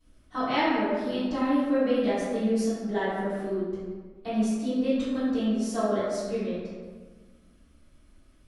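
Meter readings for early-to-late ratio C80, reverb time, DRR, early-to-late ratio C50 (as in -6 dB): 0.5 dB, 1.4 s, -15.0 dB, -2.5 dB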